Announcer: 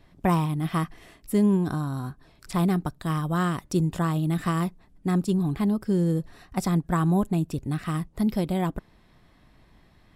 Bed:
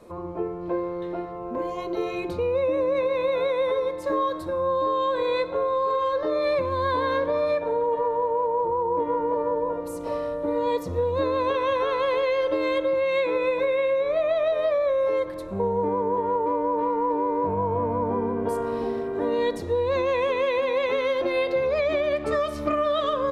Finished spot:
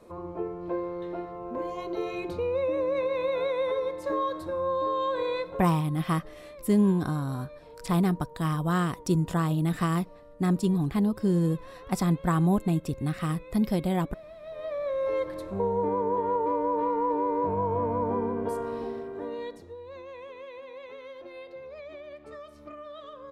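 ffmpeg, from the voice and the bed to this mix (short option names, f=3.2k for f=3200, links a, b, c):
-filter_complex "[0:a]adelay=5350,volume=-1dB[a];[1:a]volume=17dB,afade=t=out:st=5.23:d=0.57:silence=0.105925,afade=t=in:st=14.41:d=0.91:silence=0.0891251,afade=t=out:st=18.15:d=1.61:silence=0.141254[b];[a][b]amix=inputs=2:normalize=0"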